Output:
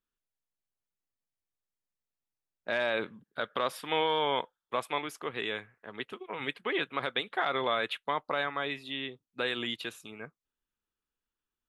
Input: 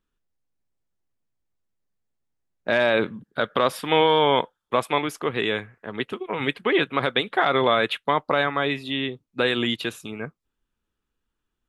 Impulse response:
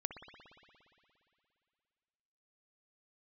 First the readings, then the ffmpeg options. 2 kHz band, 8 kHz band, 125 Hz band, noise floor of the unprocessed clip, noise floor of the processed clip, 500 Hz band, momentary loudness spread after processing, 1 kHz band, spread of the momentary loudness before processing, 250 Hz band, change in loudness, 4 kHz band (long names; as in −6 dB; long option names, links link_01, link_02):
−8.5 dB, −8.0 dB, −14.5 dB, −82 dBFS, below −85 dBFS, −11.0 dB, 12 LU, −9.0 dB, 12 LU, −13.0 dB, −9.5 dB, −8.0 dB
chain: -af "lowshelf=frequency=400:gain=-7.5,volume=-8dB"